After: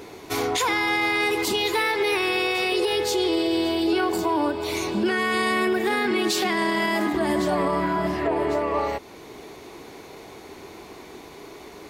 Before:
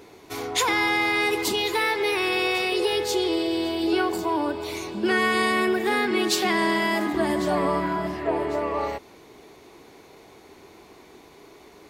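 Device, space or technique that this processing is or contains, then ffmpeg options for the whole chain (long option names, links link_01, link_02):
stacked limiters: -af "alimiter=limit=-16dB:level=0:latency=1:release=24,alimiter=limit=-21.5dB:level=0:latency=1:release=447,volume=7dB"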